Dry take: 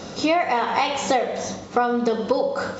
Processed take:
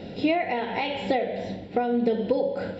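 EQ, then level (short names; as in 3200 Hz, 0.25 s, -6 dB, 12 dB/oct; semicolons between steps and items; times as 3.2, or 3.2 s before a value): high shelf 3900 Hz -11.5 dB; fixed phaser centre 2800 Hz, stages 4; 0.0 dB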